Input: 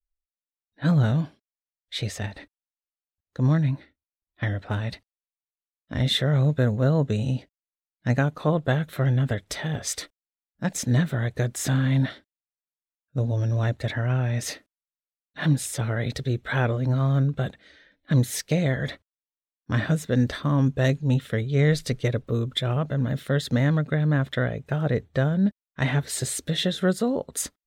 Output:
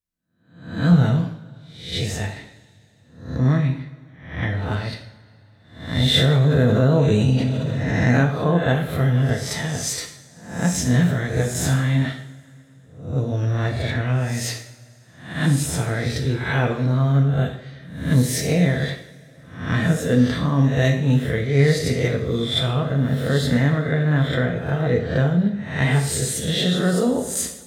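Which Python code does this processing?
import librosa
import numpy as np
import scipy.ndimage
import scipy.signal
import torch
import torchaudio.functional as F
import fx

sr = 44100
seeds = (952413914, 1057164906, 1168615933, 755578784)

y = fx.spec_swells(x, sr, rise_s=0.58)
y = scipy.signal.sosfilt(scipy.signal.butter(2, 75.0, 'highpass', fs=sr, output='sos'), y)
y = fx.low_shelf(y, sr, hz=140.0, db=5.5)
y = fx.rev_double_slope(y, sr, seeds[0], early_s=0.57, late_s=3.1, knee_db=-22, drr_db=2.0)
y = fx.env_flatten(y, sr, amount_pct=70, at=(6.14, 8.24))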